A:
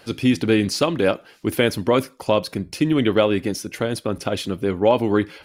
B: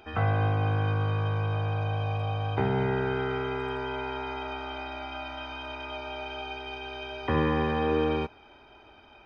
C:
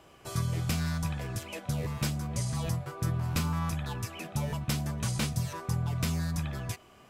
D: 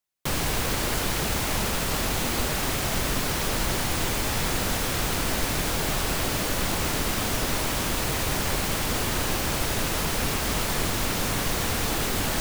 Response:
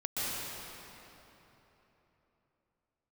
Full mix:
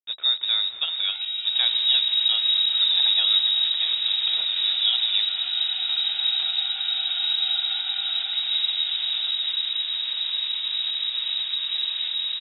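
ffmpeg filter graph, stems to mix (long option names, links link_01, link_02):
-filter_complex "[0:a]acrusher=bits=4:mix=0:aa=0.000001,volume=-10.5dB,asplit=3[link_01][link_02][link_03];[link_02]volume=-22dB[link_04];[1:a]acompressor=threshold=-35dB:ratio=6,flanger=delay=20:depth=6.3:speed=1.8,adelay=1050,volume=-0.5dB,asplit=2[link_05][link_06];[link_06]volume=-7.5dB[link_07];[2:a]adelay=1200,volume=-7dB[link_08];[3:a]lowpass=frequency=1000:poles=1,alimiter=limit=-24dB:level=0:latency=1:release=129,adelay=1300,volume=1dB[link_09];[link_03]apad=whole_len=365639[link_10];[link_08][link_10]sidechaincompress=threshold=-32dB:ratio=8:attack=16:release=417[link_11];[4:a]atrim=start_sample=2205[link_12];[link_04][link_07]amix=inputs=2:normalize=0[link_13];[link_13][link_12]afir=irnorm=-1:irlink=0[link_14];[link_01][link_05][link_11][link_09][link_14]amix=inputs=5:normalize=0,highpass=frequency=65:width=0.5412,highpass=frequency=65:width=1.3066,aemphasis=mode=reproduction:type=bsi,lowpass=frequency=3300:width_type=q:width=0.5098,lowpass=frequency=3300:width_type=q:width=0.6013,lowpass=frequency=3300:width_type=q:width=0.9,lowpass=frequency=3300:width_type=q:width=2.563,afreqshift=-3900"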